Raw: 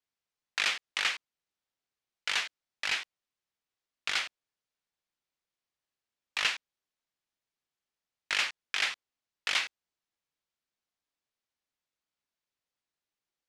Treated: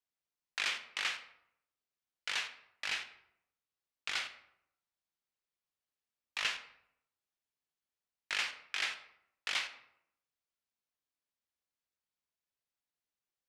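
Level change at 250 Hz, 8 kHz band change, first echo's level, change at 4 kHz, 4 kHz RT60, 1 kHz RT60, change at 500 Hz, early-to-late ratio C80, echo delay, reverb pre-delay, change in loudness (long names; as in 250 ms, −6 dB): −5.0 dB, −5.5 dB, no echo audible, −5.5 dB, 0.45 s, 0.70 s, −5.5 dB, 14.5 dB, no echo audible, 14 ms, −5.5 dB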